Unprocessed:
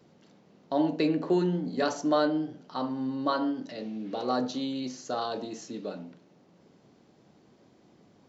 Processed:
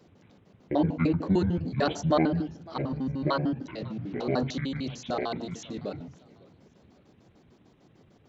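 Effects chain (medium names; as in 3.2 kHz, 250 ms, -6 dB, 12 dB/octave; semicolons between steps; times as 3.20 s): pitch shift switched off and on -11 st, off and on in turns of 75 ms; modulated delay 553 ms, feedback 33%, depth 163 cents, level -22.5 dB; trim +1.5 dB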